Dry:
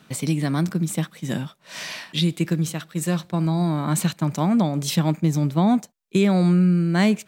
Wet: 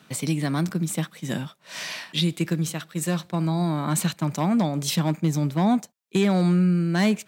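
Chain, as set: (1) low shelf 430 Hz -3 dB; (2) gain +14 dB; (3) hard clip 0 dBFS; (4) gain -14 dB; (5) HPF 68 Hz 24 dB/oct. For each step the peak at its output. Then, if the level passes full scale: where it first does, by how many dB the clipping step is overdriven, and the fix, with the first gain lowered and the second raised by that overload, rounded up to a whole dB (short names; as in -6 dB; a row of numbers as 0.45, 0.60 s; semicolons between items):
-7.5, +6.5, 0.0, -14.0, -9.5 dBFS; step 2, 6.5 dB; step 2 +7 dB, step 4 -7 dB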